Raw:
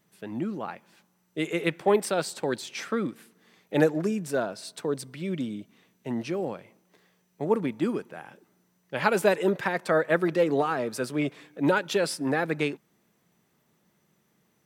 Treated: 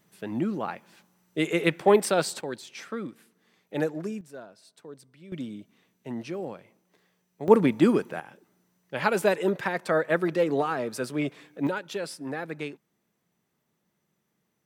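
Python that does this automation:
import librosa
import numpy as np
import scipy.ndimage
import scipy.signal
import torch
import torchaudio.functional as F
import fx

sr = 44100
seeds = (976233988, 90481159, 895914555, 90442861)

y = fx.gain(x, sr, db=fx.steps((0.0, 3.0), (2.41, -6.0), (4.21, -15.5), (5.32, -4.0), (7.48, 7.0), (8.2, -1.0), (11.67, -7.5)))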